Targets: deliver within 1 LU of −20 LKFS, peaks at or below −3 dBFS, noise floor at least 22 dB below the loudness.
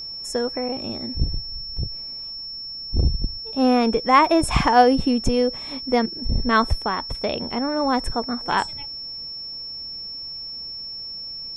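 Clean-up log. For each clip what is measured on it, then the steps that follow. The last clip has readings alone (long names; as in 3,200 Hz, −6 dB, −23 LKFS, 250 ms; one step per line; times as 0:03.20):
interfering tone 5,400 Hz; level of the tone −31 dBFS; integrated loudness −23.0 LKFS; sample peak −2.5 dBFS; target loudness −20.0 LKFS
→ notch filter 5,400 Hz, Q 30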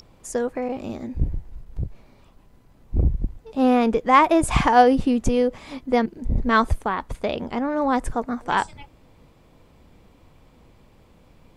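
interfering tone none found; integrated loudness −22.0 LKFS; sample peak −2.5 dBFS; target loudness −20.0 LKFS
→ level +2 dB
brickwall limiter −3 dBFS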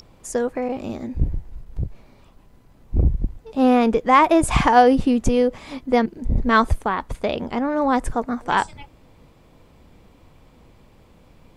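integrated loudness −20.5 LKFS; sample peak −3.0 dBFS; background noise floor −53 dBFS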